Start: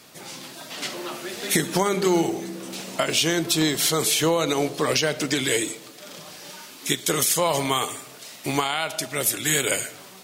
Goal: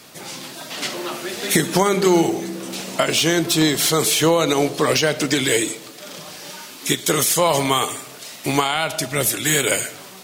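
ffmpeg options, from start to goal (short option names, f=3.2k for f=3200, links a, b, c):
-filter_complex "[0:a]asettb=1/sr,asplit=3[a][b][c];[a]atrim=end=8.754[d];[b]atrim=start=8.75:end=9.29,asetpts=PTS-STARTPTS,afade=t=in:d=0.004:c=qsin,afade=t=out:st=0.536:d=0.004:c=qsin,lowshelf=f=120:g=11.5[e];[c]atrim=start=9.286[f];[d][e]acrossfade=d=0.004:c1=hsin:c2=qsin[g];[g][f]acrossfade=d=0.004:c1=qsin:c2=hsin,acrossover=split=1500[h][i];[i]asoftclip=type=tanh:threshold=-17dB[j];[h][j]amix=inputs=2:normalize=0,volume=5dB"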